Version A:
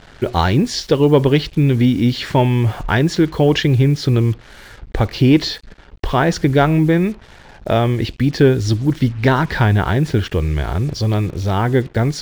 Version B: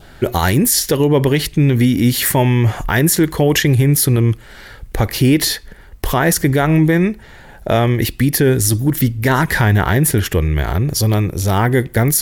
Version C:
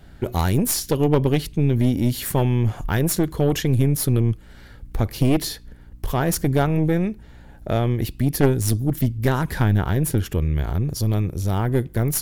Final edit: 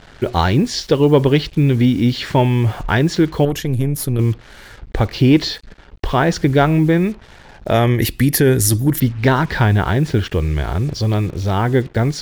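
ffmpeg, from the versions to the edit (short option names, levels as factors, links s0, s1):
-filter_complex "[0:a]asplit=3[s0][s1][s2];[s0]atrim=end=3.452[s3];[2:a]atrim=start=3.448:end=4.192[s4];[s1]atrim=start=4.188:end=7.742[s5];[1:a]atrim=start=7.738:end=9.002[s6];[s2]atrim=start=8.998[s7];[s3][s4]acrossfade=d=0.004:c1=hsin:c2=hsin[s8];[s8][s5]acrossfade=d=0.004:c1=hsin:c2=hsin[s9];[s9][s6]acrossfade=d=0.004:c1=hsin:c2=hsin[s10];[s10][s7]acrossfade=d=0.004:c1=hsin:c2=hsin"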